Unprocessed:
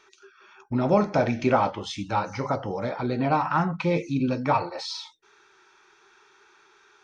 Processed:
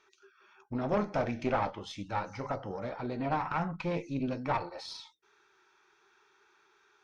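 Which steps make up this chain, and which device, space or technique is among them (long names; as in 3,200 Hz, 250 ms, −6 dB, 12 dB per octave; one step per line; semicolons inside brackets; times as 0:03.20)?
tube preamp driven hard (tube saturation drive 16 dB, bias 0.7; high-shelf EQ 5,800 Hz −4 dB)
level −4.5 dB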